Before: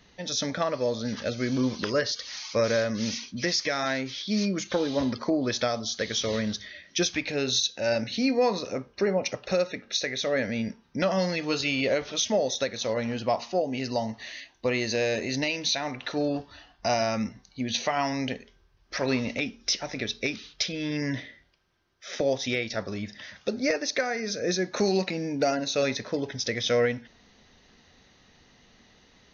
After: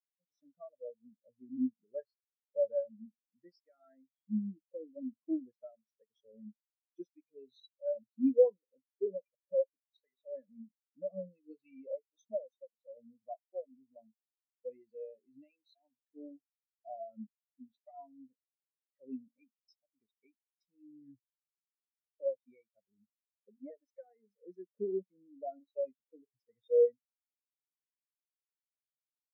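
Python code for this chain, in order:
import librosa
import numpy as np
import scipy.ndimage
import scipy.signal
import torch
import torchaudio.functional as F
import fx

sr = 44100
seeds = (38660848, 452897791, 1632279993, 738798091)

y = fx.spectral_expand(x, sr, expansion=4.0)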